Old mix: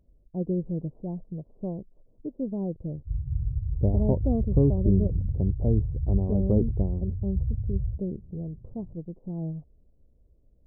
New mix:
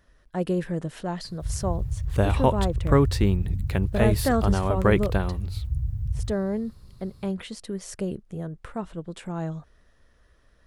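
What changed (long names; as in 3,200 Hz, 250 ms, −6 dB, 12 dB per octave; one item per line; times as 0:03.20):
background: entry −1.65 s
master: remove Gaussian smoothing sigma 17 samples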